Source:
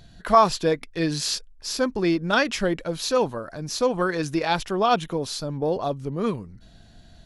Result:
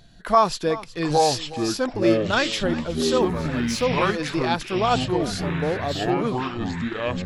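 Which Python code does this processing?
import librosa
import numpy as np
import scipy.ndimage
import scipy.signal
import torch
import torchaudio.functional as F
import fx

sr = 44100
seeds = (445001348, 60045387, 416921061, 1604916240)

y = fx.law_mismatch(x, sr, coded='mu', at=(3.22, 3.84))
y = fx.peak_eq(y, sr, hz=69.0, db=-4.5, octaves=1.8)
y = fx.echo_pitch(y, sr, ms=675, semitones=-6, count=3, db_per_echo=-3.0)
y = y + 10.0 ** (-17.0 / 20.0) * np.pad(y, (int(366 * sr / 1000.0), 0))[:len(y)]
y = y * 10.0 ** (-1.0 / 20.0)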